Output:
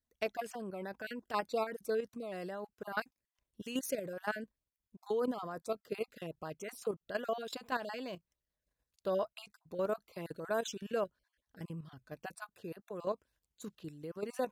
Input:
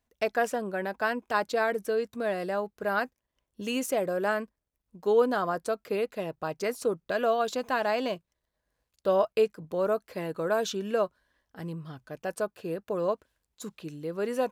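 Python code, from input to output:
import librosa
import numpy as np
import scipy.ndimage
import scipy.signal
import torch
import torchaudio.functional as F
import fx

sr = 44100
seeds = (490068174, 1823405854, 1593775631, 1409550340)

y = fx.spec_dropout(x, sr, seeds[0], share_pct=22)
y = fx.peak_eq(y, sr, hz=810.0, db=-4.0, octaves=2.8)
y = fx.level_steps(y, sr, step_db=10)
y = F.gain(torch.from_numpy(y), -1.5).numpy()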